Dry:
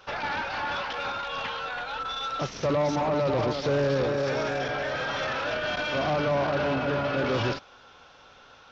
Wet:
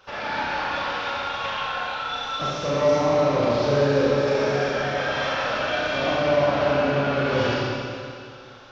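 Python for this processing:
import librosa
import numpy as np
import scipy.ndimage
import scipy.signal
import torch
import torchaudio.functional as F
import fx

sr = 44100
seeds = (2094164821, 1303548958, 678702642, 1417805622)

y = fx.rev_schroeder(x, sr, rt60_s=2.3, comb_ms=29, drr_db=-6.0)
y = y * librosa.db_to_amplitude(-2.5)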